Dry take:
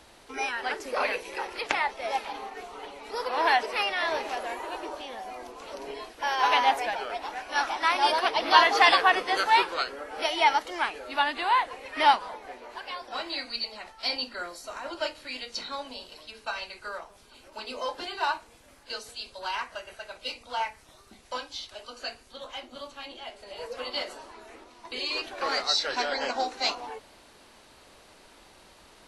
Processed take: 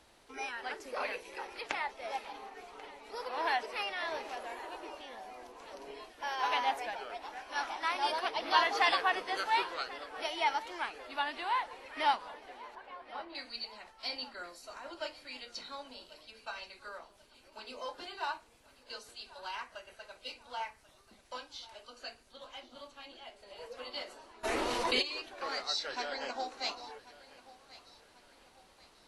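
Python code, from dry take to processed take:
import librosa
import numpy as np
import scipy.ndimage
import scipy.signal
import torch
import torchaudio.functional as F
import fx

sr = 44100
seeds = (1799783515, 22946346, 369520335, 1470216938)

y = fx.lowpass(x, sr, hz=1600.0, slope=12, at=(12.75, 13.35))
y = fx.echo_feedback(y, sr, ms=1088, feedback_pct=41, wet_db=-19)
y = fx.env_flatten(y, sr, amount_pct=70, at=(24.43, 25.01), fade=0.02)
y = y * librosa.db_to_amplitude(-9.0)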